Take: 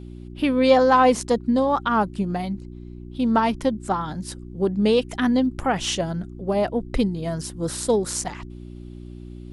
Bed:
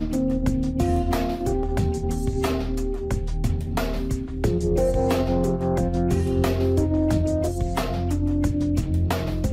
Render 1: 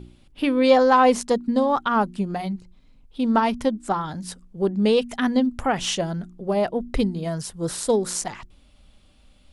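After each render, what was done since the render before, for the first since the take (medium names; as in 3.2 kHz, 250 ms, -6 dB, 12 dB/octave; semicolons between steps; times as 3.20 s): de-hum 60 Hz, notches 6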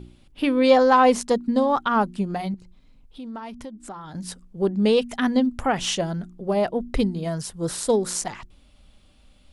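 2.54–4.15 s: compression 3:1, threshold -38 dBFS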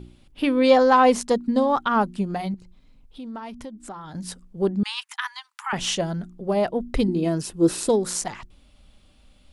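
4.83–5.73 s: steep high-pass 870 Hz 96 dB/octave; 7.08–7.89 s: small resonant body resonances 330/2600 Hz, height 13 dB, ringing for 30 ms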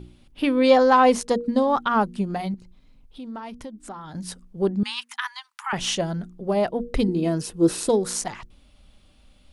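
band-stop 7.5 kHz, Q 20; de-hum 237.9 Hz, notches 2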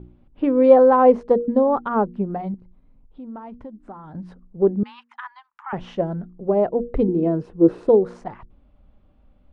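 low-pass 1.1 kHz 12 dB/octave; dynamic bell 440 Hz, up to +7 dB, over -34 dBFS, Q 1.6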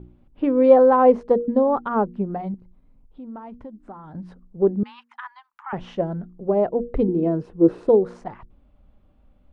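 trim -1 dB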